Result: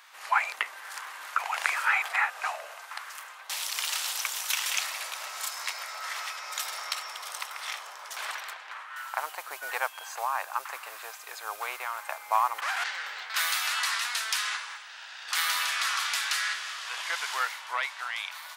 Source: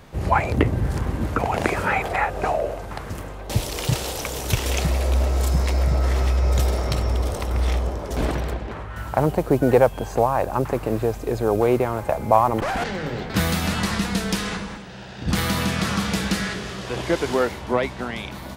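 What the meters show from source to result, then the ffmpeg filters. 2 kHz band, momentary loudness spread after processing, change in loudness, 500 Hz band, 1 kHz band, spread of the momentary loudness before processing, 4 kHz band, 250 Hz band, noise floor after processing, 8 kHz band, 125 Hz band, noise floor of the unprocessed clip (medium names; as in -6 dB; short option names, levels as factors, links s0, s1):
0.0 dB, 13 LU, -7.5 dB, -23.5 dB, -6.5 dB, 10 LU, 0.0 dB, under -40 dB, -46 dBFS, 0.0 dB, under -40 dB, -35 dBFS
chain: -af "aeval=exprs='val(0)+0.0224*(sin(2*PI*60*n/s)+sin(2*PI*2*60*n/s)/2+sin(2*PI*3*60*n/s)/3+sin(2*PI*4*60*n/s)/4+sin(2*PI*5*60*n/s)/5)':c=same,highpass=f=1100:w=0.5412,highpass=f=1100:w=1.3066"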